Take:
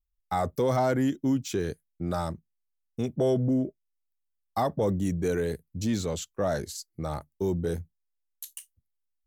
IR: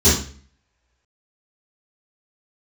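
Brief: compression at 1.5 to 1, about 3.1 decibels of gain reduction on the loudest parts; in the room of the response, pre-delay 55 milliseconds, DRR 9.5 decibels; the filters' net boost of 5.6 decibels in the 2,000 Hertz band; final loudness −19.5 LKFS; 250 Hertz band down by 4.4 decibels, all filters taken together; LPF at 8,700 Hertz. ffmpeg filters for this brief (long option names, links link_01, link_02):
-filter_complex "[0:a]lowpass=8700,equalizer=frequency=250:width_type=o:gain=-5.5,equalizer=frequency=2000:width_type=o:gain=7.5,acompressor=threshold=-30dB:ratio=1.5,asplit=2[link_01][link_02];[1:a]atrim=start_sample=2205,adelay=55[link_03];[link_02][link_03]afir=irnorm=-1:irlink=0,volume=-30.5dB[link_04];[link_01][link_04]amix=inputs=2:normalize=0,volume=11dB"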